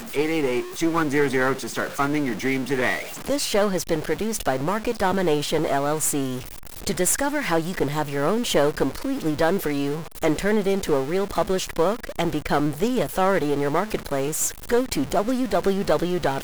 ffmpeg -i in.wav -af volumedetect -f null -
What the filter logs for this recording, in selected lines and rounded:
mean_volume: -23.0 dB
max_volume: -5.8 dB